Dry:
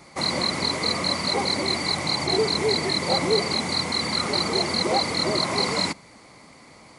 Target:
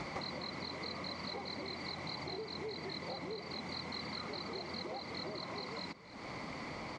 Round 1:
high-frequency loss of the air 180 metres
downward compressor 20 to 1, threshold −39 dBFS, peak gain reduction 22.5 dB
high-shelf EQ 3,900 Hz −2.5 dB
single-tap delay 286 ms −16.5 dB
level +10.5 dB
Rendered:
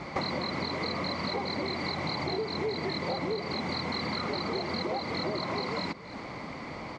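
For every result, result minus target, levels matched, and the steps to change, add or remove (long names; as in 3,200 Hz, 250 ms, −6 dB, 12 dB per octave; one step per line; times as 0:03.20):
downward compressor: peak gain reduction −11.5 dB; 8,000 Hz band −4.0 dB
change: downward compressor 20 to 1, threshold −51 dBFS, peak gain reduction 33.5 dB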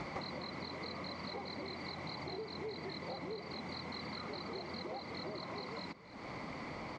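8,000 Hz band −3.5 dB
change: high-shelf EQ 3,900 Hz +4.5 dB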